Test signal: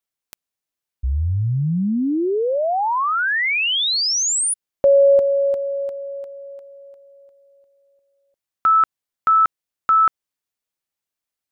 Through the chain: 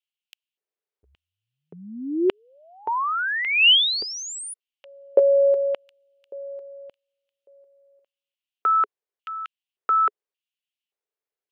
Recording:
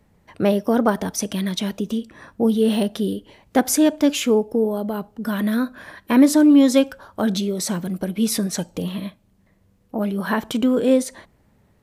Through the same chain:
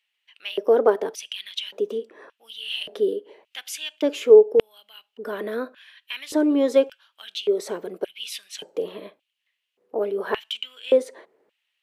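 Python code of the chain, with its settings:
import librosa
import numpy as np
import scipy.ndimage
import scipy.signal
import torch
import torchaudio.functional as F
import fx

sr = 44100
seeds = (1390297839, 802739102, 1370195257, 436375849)

y = fx.filter_lfo_highpass(x, sr, shape='square', hz=0.87, low_hz=420.0, high_hz=2900.0, q=5.3)
y = fx.bass_treble(y, sr, bass_db=-5, treble_db=-9)
y = y * librosa.db_to_amplitude(-5.5)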